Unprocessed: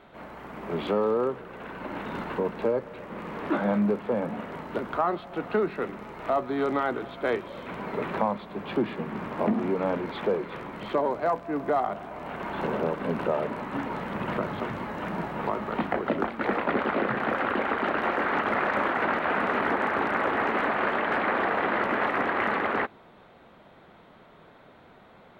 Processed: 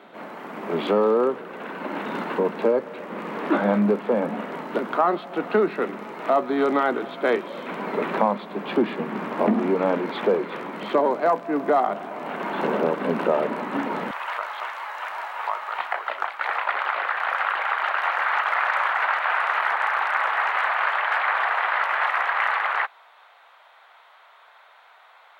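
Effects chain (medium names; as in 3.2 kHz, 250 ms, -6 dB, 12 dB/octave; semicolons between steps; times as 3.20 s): high-pass 190 Hz 24 dB/octave, from 14.11 s 810 Hz; trim +5.5 dB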